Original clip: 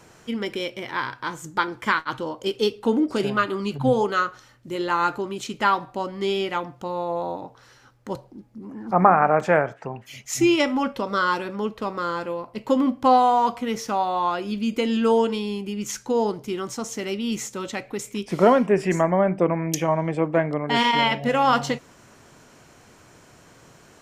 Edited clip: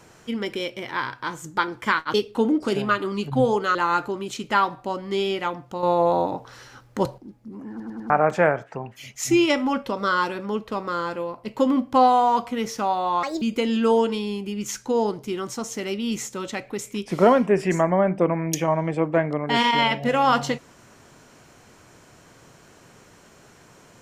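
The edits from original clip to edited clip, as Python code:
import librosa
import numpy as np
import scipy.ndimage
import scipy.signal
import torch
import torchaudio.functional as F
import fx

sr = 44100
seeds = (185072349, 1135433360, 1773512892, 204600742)

y = fx.edit(x, sr, fx.cut(start_s=2.14, length_s=0.48),
    fx.cut(start_s=4.23, length_s=0.62),
    fx.clip_gain(start_s=6.93, length_s=1.35, db=7.5),
    fx.stutter_over(start_s=8.8, slice_s=0.1, count=4),
    fx.speed_span(start_s=14.33, length_s=0.29, speed=1.55), tone=tone)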